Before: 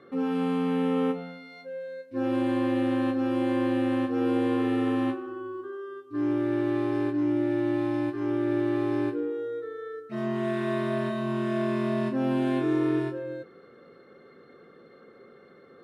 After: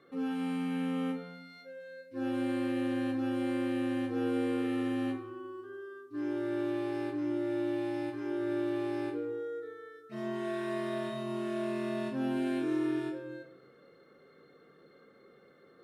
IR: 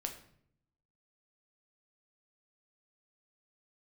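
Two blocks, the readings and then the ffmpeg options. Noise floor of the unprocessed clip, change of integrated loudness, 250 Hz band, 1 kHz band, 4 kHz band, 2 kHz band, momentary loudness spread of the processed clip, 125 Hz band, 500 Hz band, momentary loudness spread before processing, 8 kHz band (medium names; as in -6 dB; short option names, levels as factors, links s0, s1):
-53 dBFS, -6.5 dB, -6.5 dB, -7.5 dB, -3.5 dB, -5.0 dB, 13 LU, -9.5 dB, -6.5 dB, 11 LU, no reading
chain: -filter_complex "[0:a]highshelf=f=3800:g=9.5[s0];[1:a]atrim=start_sample=2205,afade=t=out:st=0.34:d=0.01,atrim=end_sample=15435[s1];[s0][s1]afir=irnorm=-1:irlink=0,volume=0.447"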